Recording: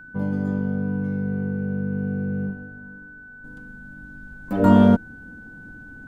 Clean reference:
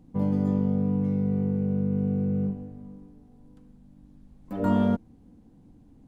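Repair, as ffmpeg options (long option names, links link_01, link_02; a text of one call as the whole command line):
ffmpeg -i in.wav -af "bandreject=frequency=1500:width=30,asetnsamples=nb_out_samples=441:pad=0,asendcmd='3.44 volume volume -9dB',volume=0dB" out.wav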